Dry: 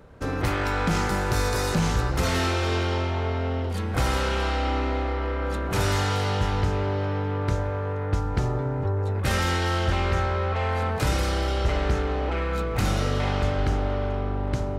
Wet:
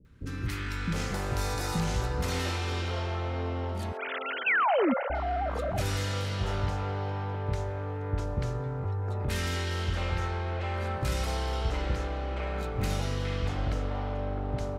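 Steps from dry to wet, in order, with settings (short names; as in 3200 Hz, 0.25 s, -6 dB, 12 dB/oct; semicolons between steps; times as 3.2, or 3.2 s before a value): 3.92–5.1 sine-wave speech; three bands offset in time lows, highs, mids 50/710 ms, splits 340/1300 Hz; 4.46–4.94 painted sound fall 220–2800 Hz -19 dBFS; gain -5.5 dB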